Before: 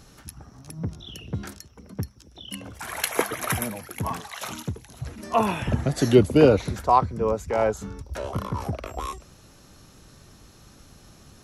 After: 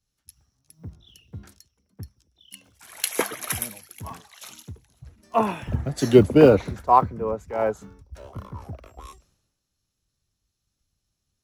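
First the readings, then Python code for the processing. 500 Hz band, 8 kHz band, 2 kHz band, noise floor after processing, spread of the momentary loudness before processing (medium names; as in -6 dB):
+1.5 dB, +0.5 dB, -2.5 dB, -80 dBFS, 20 LU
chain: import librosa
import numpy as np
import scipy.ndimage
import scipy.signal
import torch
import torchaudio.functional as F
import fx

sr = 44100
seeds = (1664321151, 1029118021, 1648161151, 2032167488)

y = fx.block_float(x, sr, bits=7)
y = fx.band_widen(y, sr, depth_pct=100)
y = F.gain(torch.from_numpy(y), -6.5).numpy()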